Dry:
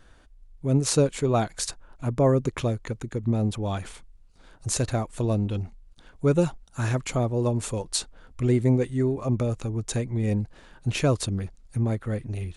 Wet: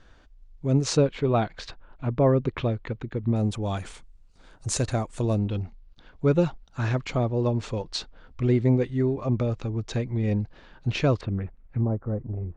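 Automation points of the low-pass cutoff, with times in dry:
low-pass 24 dB/octave
6.5 kHz
from 0.97 s 3.9 kHz
from 3.36 s 8.9 kHz
from 5.39 s 5.1 kHz
from 11.21 s 2.4 kHz
from 11.81 s 1.1 kHz

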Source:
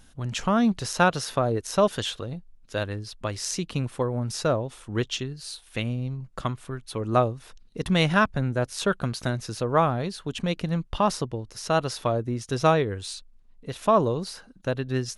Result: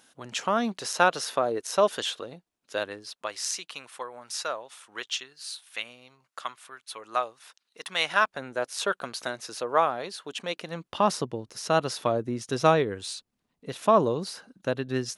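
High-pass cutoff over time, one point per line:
2.86 s 360 Hz
3.62 s 1 kHz
7.90 s 1 kHz
8.43 s 490 Hz
10.62 s 490 Hz
11.11 s 170 Hz

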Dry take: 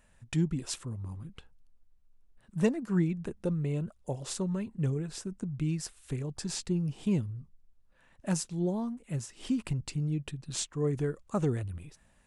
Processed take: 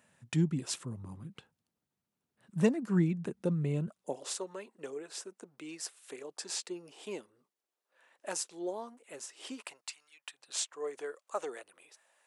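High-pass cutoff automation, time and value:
high-pass 24 dB/octave
3.86 s 120 Hz
4.30 s 390 Hz
9.53 s 390 Hz
10.11 s 1.3 kHz
10.49 s 500 Hz

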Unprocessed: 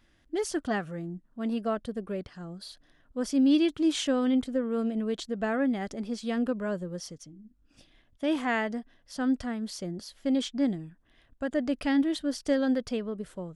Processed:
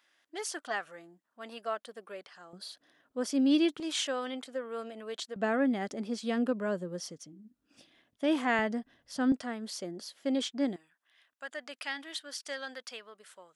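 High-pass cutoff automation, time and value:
760 Hz
from 2.53 s 290 Hz
from 3.80 s 650 Hz
from 5.36 s 200 Hz
from 8.59 s 75 Hz
from 9.32 s 310 Hz
from 10.76 s 1.2 kHz

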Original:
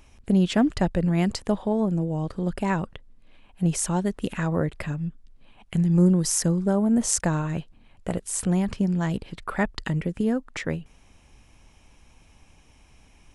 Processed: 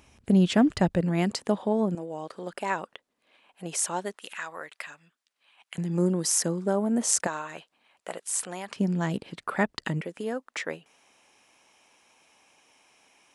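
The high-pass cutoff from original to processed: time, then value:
81 Hz
from 1.01 s 200 Hz
from 1.95 s 490 Hz
from 4.16 s 1.2 kHz
from 5.78 s 280 Hz
from 7.27 s 670 Hz
from 8.76 s 180 Hz
from 10.01 s 460 Hz

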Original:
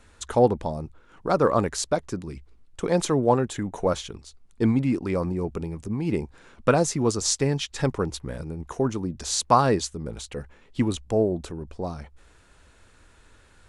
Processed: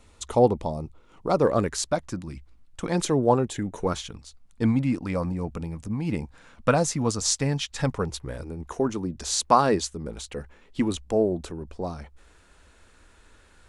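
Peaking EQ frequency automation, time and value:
peaking EQ -15 dB 0.25 oct
1.37 s 1.6 kHz
1.89 s 420 Hz
2.90 s 420 Hz
3.24 s 2.5 kHz
4.08 s 380 Hz
7.92 s 380 Hz
8.61 s 120 Hz

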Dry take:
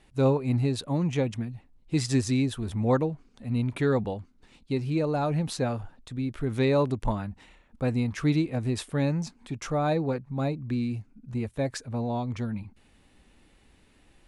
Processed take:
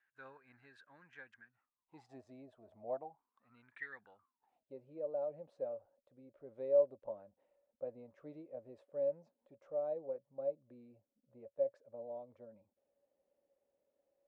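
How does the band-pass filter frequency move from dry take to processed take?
band-pass filter, Q 17
1.45 s 1.6 kHz
2.24 s 630 Hz
2.91 s 630 Hz
3.87 s 2 kHz
4.72 s 560 Hz

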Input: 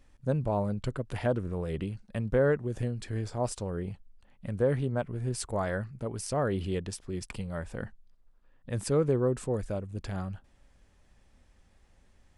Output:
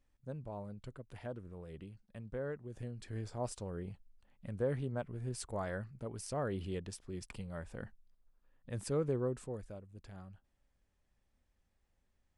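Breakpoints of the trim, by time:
2.54 s -15.5 dB
3.19 s -8 dB
9.23 s -8 dB
9.84 s -16 dB

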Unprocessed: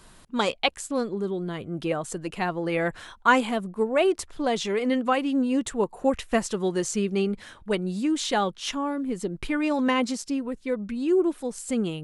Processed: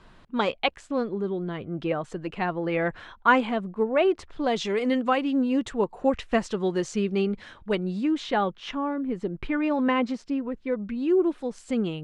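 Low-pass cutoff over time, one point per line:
4.21 s 3.1 kHz
4.82 s 7.8 kHz
5.26 s 4.4 kHz
7.79 s 4.4 kHz
8.36 s 2.5 kHz
10.66 s 2.5 kHz
11.25 s 4 kHz

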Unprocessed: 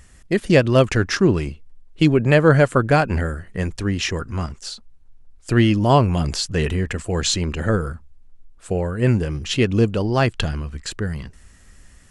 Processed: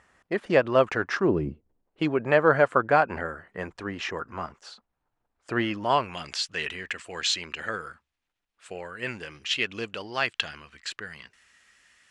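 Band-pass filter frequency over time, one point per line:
band-pass filter, Q 0.98
1.23 s 980 Hz
1.44 s 220 Hz
2.06 s 1 kHz
5.56 s 1 kHz
6.20 s 2.5 kHz

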